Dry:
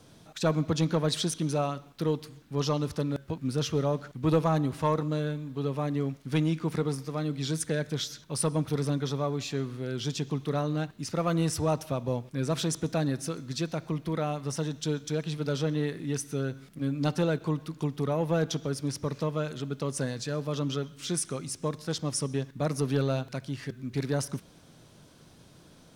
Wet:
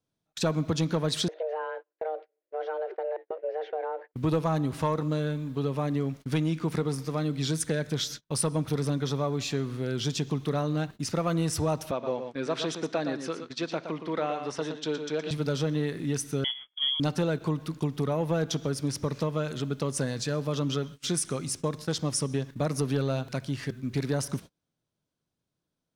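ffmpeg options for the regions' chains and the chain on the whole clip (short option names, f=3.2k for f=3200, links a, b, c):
-filter_complex "[0:a]asettb=1/sr,asplit=3[a][b][c];[a]atrim=end=1.284[d];[b]atrim=start=1.28:end=4.14,asetpts=PTS-STARTPTS,afade=t=in:d=0.004:c=qsin,afade=t=out:st=2.856:d=0.004:c=qsin,acompressor=threshold=-29dB:ratio=3:attack=3.2:release=140:knee=1:detection=peak,afreqshift=310,highpass=250,equalizer=f=270:t=q:w=4:g=7,equalizer=f=430:t=q:w=4:g=-3,equalizer=f=830:t=q:w=4:g=-7,equalizer=f=1.2k:t=q:w=4:g=-9,equalizer=f=1.7k:t=q:w=4:g=-3,lowpass=f=2.1k:w=0.5412,lowpass=f=2.1k:w=1.3066[e];[c]atrim=start=4.136[f];[d][e]acrossfade=d=0.004:c1=hsin:c2=qsin[g];[g][f]acrossfade=d=0.004:c1=qsin:c2=hsin,asettb=1/sr,asplit=3[h][i][j];[h]atrim=end=11.914[k];[i]atrim=start=11.91:end=15.31,asetpts=PTS-STARTPTS,afade=t=in:d=0.004:c=qsin,afade=t=out:st=3.396:d=0.004:c=qsin,highpass=330,lowpass=4k,aecho=1:1:117:0.376,atrim=end_sample=149940[l];[j]atrim=start=15.306[m];[k][l]acrossfade=d=0.004:c1=hsin:c2=qsin[n];[n][m]acrossfade=d=0.004:c1=qsin:c2=hsin,asettb=1/sr,asplit=3[o][p][q];[o]atrim=end=16.444[r];[p]atrim=start=16.44:end=17,asetpts=PTS-STARTPTS,afade=t=in:d=0.004:c=qsin,afade=t=out:st=0.556:d=0.004:c=qsin,acompressor=mode=upward:threshold=-40dB:ratio=2.5:attack=3.2:release=140:knee=2.83:detection=peak,lowpass=f=3k:t=q:w=0.5098,lowpass=f=3k:t=q:w=0.6013,lowpass=f=3k:t=q:w=0.9,lowpass=f=3k:t=q:w=2.563,afreqshift=-3500[s];[q]atrim=start=16.996[t];[r][s]acrossfade=d=0.004:c1=hsin:c2=qsin[u];[u][t]acrossfade=d=0.004:c1=qsin:c2=hsin,agate=range=-34dB:threshold=-42dB:ratio=16:detection=peak,acompressor=threshold=-29dB:ratio=2.5,volume=4dB"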